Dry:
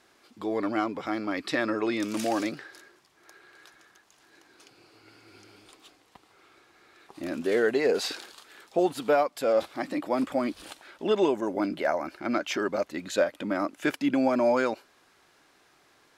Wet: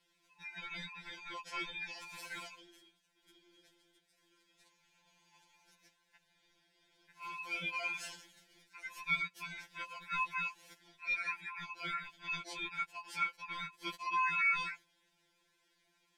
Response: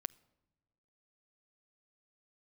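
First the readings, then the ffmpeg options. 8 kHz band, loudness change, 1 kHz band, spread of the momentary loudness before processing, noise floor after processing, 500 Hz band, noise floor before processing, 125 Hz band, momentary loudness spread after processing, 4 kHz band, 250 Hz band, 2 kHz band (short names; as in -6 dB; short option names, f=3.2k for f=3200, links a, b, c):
-11.5 dB, -10.0 dB, -8.5 dB, 10 LU, -76 dBFS, -32.5 dB, -63 dBFS, -13.0 dB, 14 LU, -7.0 dB, -28.5 dB, -2.0 dB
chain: -af "afftfilt=real='real(if(between(b,1,1008),(2*floor((b-1)/48)+1)*48-b,b),0)':imag='imag(if(between(b,1,1008),(2*floor((b-1)/48)+1)*48-b,b),0)*if(between(b,1,1008),-1,1)':win_size=2048:overlap=0.75,aeval=exprs='val(0)*sin(2*PI*1800*n/s)':c=same,asuperstop=centerf=1200:order=8:qfactor=5.3,lowshelf=f=130:g=-2.5,afftfilt=real='re*2.83*eq(mod(b,8),0)':imag='im*2.83*eq(mod(b,8),0)':win_size=2048:overlap=0.75,volume=-8dB"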